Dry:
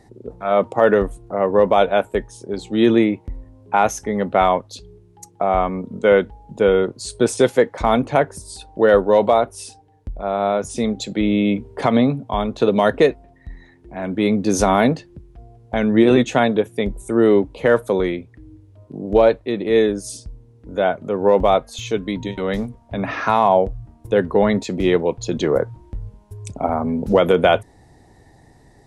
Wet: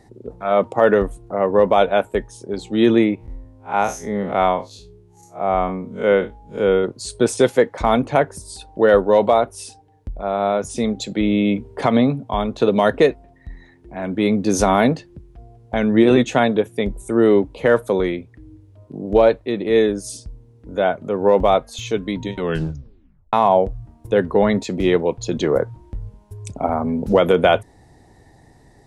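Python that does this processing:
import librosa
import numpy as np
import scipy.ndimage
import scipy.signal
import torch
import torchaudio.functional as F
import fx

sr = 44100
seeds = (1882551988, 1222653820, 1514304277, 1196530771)

y = fx.spec_blur(x, sr, span_ms=105.0, at=(3.15, 6.84))
y = fx.edit(y, sr, fx.tape_stop(start_s=22.39, length_s=0.94), tone=tone)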